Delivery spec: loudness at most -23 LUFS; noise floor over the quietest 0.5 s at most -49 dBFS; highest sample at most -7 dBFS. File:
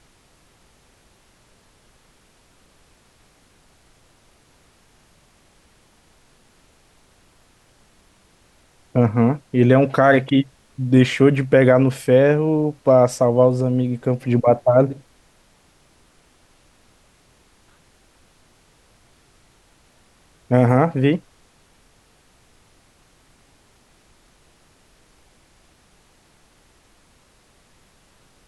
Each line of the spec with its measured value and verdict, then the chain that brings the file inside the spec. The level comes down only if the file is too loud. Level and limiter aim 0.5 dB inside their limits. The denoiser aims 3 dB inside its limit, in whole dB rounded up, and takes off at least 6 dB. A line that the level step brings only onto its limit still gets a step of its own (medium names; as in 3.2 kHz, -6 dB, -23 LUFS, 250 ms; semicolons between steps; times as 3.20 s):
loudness -17.0 LUFS: fail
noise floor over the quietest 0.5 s -56 dBFS: pass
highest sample -2.5 dBFS: fail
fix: trim -6.5 dB